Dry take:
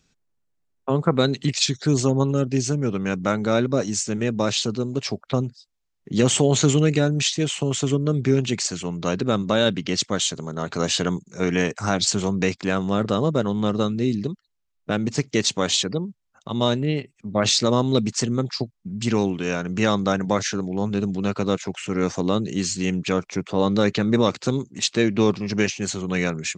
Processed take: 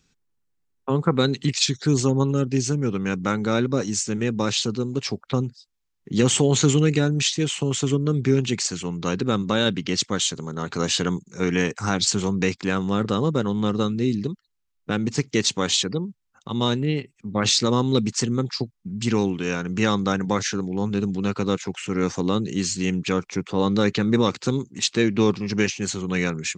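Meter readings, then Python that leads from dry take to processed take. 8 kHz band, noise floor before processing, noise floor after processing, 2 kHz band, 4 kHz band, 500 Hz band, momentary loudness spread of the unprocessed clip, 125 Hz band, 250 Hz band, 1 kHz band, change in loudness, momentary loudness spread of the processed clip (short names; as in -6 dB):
0.0 dB, -72 dBFS, -72 dBFS, 0.0 dB, 0.0 dB, -1.5 dB, 7 LU, 0.0 dB, 0.0 dB, -1.0 dB, -0.5 dB, 7 LU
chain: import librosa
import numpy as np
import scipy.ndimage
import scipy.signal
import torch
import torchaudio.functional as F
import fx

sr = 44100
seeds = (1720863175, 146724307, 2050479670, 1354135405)

y = fx.peak_eq(x, sr, hz=630.0, db=-11.5, octaves=0.25)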